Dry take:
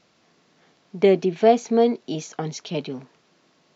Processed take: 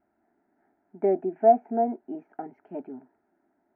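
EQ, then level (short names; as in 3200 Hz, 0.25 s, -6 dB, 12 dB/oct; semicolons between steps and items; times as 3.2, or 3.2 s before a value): LPF 1400 Hz 24 dB/oct; dynamic EQ 680 Hz, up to +7 dB, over -33 dBFS, Q 2.2; fixed phaser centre 750 Hz, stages 8; -5.5 dB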